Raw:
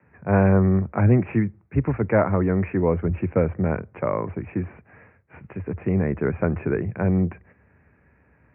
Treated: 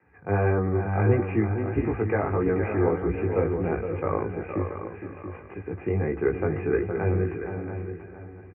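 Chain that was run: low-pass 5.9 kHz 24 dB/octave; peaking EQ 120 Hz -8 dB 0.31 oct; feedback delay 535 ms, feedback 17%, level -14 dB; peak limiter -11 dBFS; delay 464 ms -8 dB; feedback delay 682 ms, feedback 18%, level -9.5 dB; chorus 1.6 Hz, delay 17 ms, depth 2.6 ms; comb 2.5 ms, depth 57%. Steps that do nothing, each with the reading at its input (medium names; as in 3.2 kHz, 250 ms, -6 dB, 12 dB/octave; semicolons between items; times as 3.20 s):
low-pass 5.9 kHz: input has nothing above 1.7 kHz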